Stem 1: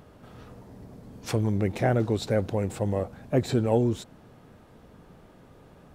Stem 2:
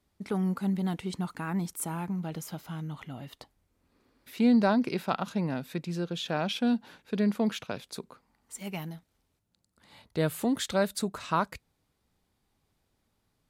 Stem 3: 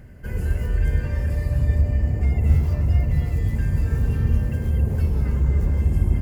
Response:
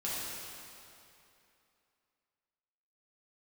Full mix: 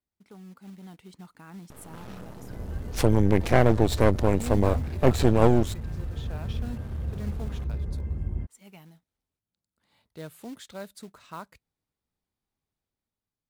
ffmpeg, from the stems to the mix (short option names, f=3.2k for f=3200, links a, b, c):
-filter_complex "[0:a]highshelf=f=8.8k:g=4.5,aeval=exprs='max(val(0),0)':c=same,adelay=1700,volume=2dB[a];[1:a]acrusher=bits=4:mode=log:mix=0:aa=0.000001,volume=-18.5dB[b];[2:a]lowpass=f=1.7k:p=1,adelay=2250,volume=-17dB[c];[a][b][c]amix=inputs=3:normalize=0,dynaudnorm=f=330:g=5:m=5.5dB"